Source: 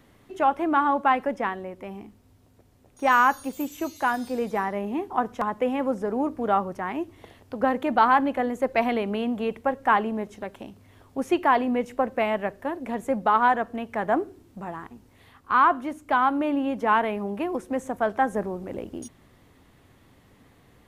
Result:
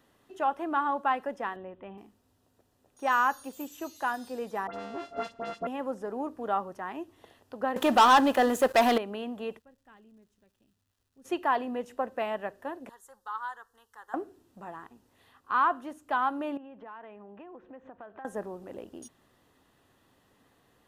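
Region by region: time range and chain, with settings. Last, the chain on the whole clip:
0:01.56–0:01.98: Butterworth low-pass 3,600 Hz 72 dB per octave + low-shelf EQ 190 Hz +6.5 dB
0:04.67–0:05.67: samples sorted by size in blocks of 64 samples + head-to-tape spacing loss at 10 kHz 25 dB + all-pass dispersion highs, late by 71 ms, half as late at 2,100 Hz
0:07.76–0:08.98: high-shelf EQ 3,400 Hz +9.5 dB + leveller curve on the samples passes 3
0:09.58–0:11.24: noise gate with hold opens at −43 dBFS, closes at −52 dBFS + guitar amp tone stack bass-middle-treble 10-0-1 + surface crackle 510 per second −61 dBFS
0:12.89–0:14.14: guitar amp tone stack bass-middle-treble 10-0-10 + phaser with its sweep stopped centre 640 Hz, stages 6
0:16.57–0:18.25: low-pass filter 2,800 Hz 24 dB per octave + downward compressor, threshold −36 dBFS
whole clip: low-shelf EQ 220 Hz −11 dB; notch filter 2,200 Hz, Q 6; level −5.5 dB

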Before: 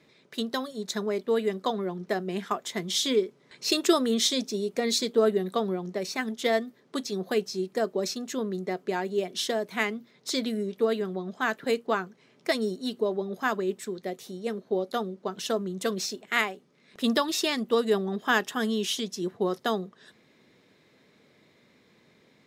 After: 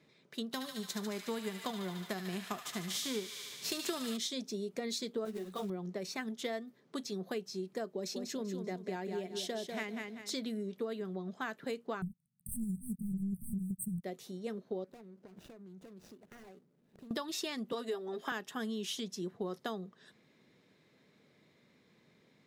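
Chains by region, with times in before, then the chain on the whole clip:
0:00.51–0:04.16: spectral envelope flattened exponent 0.6 + delay with a high-pass on its return 73 ms, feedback 80%, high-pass 1,500 Hz, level −6.5 dB
0:05.25–0:05.70: mains-hum notches 60/120/180/240 Hz + floating-point word with a short mantissa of 2 bits + string-ensemble chorus
0:07.91–0:10.34: parametric band 1,200 Hz −4.5 dB 0.52 octaves + repeating echo 194 ms, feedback 30%, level −7 dB
0:12.02–0:14.04: leveller curve on the samples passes 5 + linear-phase brick-wall band-stop 220–8,100 Hz + highs frequency-modulated by the lows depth 0.15 ms
0:14.84–0:17.11: running median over 41 samples + high-shelf EQ 5,900 Hz +5.5 dB + downward compressor 20 to 1, threshold −43 dBFS
0:17.72–0:18.32: high-pass filter 290 Hz + comb filter 7.4 ms + multiband upward and downward compressor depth 40%
whole clip: parametric band 160 Hz +4 dB 0.94 octaves; downward compressor 4 to 1, threshold −28 dBFS; level −7 dB

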